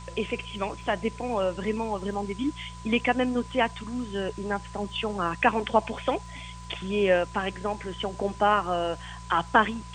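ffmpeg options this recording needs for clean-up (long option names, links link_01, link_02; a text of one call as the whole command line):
ffmpeg -i in.wav -af "adeclick=threshold=4,bandreject=frequency=58.2:width_type=h:width=4,bandreject=frequency=116.4:width_type=h:width=4,bandreject=frequency=174.6:width_type=h:width=4,bandreject=frequency=1000:width=30,afftdn=noise_reduction=30:noise_floor=-42" out.wav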